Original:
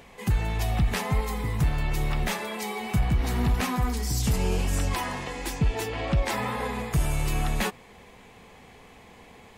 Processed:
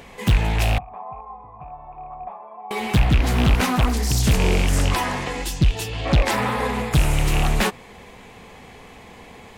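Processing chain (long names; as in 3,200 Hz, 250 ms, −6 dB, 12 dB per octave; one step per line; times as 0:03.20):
loose part that buzzes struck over −22 dBFS, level −20 dBFS
0:00.78–0:02.71: formant resonators in series a
0:05.44–0:06.05: gain on a spectral selection 210–2,600 Hz −9 dB
highs frequency-modulated by the lows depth 0.63 ms
level +7 dB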